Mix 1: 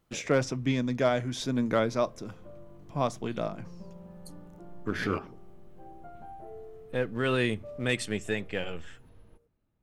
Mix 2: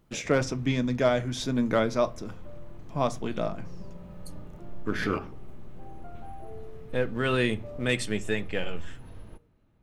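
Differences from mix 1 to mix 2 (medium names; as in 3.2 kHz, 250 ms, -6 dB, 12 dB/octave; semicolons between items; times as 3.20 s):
speech: send +8.5 dB; first sound +11.0 dB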